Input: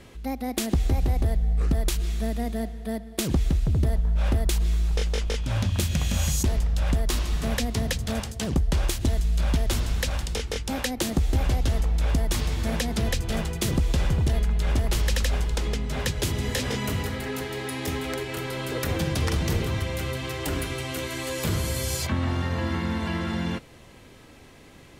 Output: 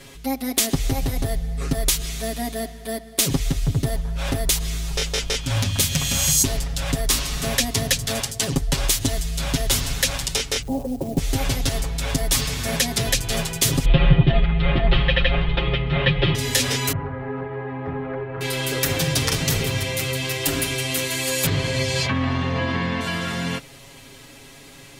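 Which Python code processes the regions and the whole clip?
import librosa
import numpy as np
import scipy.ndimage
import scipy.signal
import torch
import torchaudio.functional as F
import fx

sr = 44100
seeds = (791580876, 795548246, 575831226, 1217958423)

y = fx.chain(x, sr, fx.steep_lowpass(hz=790.0, slope=36),
    fx.low_shelf(hz=160.0, db=4.0),
    fx.quant_float(bits=4), at=(10.62, 11.18))
y = fx.chain(y, sr, fx.steep_lowpass(hz=3500.0, slope=48),
    fx.low_shelf(hz=430.0, db=5.0),
    fx.comb(ms=5.7, depth=0.97), at=(13.85, 16.35))
y = fx.chain(y, sr, fx.lowpass(hz=1400.0, slope=24),
    fx.peak_eq(hz=320.0, db=-5.0, octaves=0.77), at=(16.92, 18.41))
y = fx.chain(y, sr, fx.lowpass(hz=3200.0, slope=12),
    fx.notch(hz=1400.0, q=12.0),
    fx.env_flatten(amount_pct=50), at=(21.46, 23.01))
y = fx.high_shelf(y, sr, hz=2400.0, db=10.5)
y = y + 0.92 * np.pad(y, (int(7.3 * sr / 1000.0), 0))[:len(y)]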